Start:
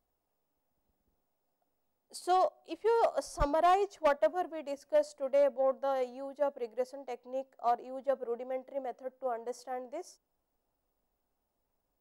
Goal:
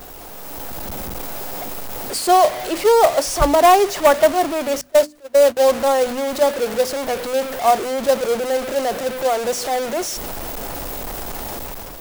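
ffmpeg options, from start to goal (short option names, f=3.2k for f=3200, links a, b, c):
-filter_complex "[0:a]aeval=exprs='val(0)+0.5*0.0178*sgn(val(0))':c=same,acrossover=split=250[a][b];[b]acrusher=bits=3:mode=log:mix=0:aa=0.000001[c];[a][c]amix=inputs=2:normalize=0,dynaudnorm=f=150:g=7:m=9dB,asettb=1/sr,asplit=3[d][e][f];[d]atrim=end=4.814[g];[e]atrim=start=4.81:end=5.57,asetpts=PTS-STARTPTS,afade=t=in:d=0.004:c=qsin,afade=t=out:st=0.756:d=0.004:c=qsin,agate=range=-26dB:threshold=-18dB:ratio=16:detection=peak[h];[f]atrim=start=5.566[i];[g][h]acrossfade=d=0.004:c1=hsin:c2=qsin[j];[j][i]acrossfade=d=0.004:c1=qsin:c2=hsin,bandreject=f=50:t=h:w=6,bandreject=f=100:t=h:w=6,bandreject=f=150:t=h:w=6,bandreject=f=200:t=h:w=6,bandreject=f=250:t=h:w=6,bandreject=f=300:t=h:w=6,volume=4.5dB"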